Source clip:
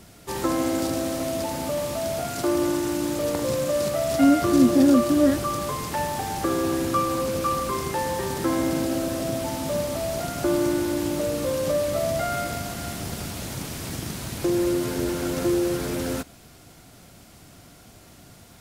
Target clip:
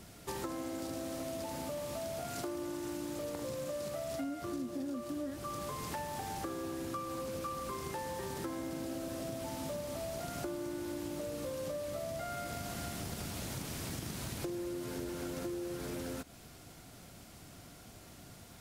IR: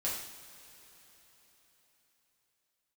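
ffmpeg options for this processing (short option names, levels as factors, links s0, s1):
-af "acompressor=threshold=0.0251:ratio=10,volume=0.596"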